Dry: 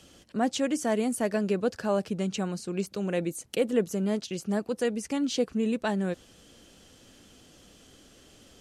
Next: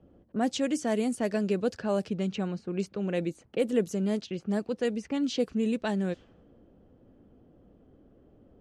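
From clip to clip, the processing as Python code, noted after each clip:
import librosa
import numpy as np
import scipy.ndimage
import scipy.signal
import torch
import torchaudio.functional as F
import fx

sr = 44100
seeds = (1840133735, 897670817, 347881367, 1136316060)

y = fx.env_lowpass(x, sr, base_hz=560.0, full_db=-22.0)
y = fx.dynamic_eq(y, sr, hz=1100.0, q=0.85, threshold_db=-41.0, ratio=4.0, max_db=-4)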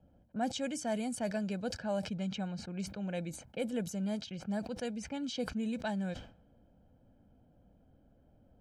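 y = x + 0.67 * np.pad(x, (int(1.3 * sr / 1000.0), 0))[:len(x)]
y = fx.sustainer(y, sr, db_per_s=110.0)
y = y * librosa.db_to_amplitude(-7.5)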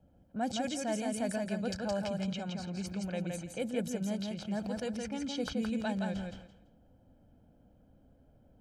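y = fx.echo_feedback(x, sr, ms=168, feedback_pct=20, wet_db=-3.5)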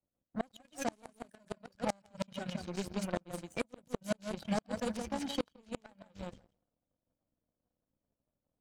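y = fx.spec_quant(x, sr, step_db=30)
y = fx.power_curve(y, sr, exponent=2.0)
y = fx.gate_flip(y, sr, shuts_db=-29.0, range_db=-33)
y = y * librosa.db_to_amplitude(11.0)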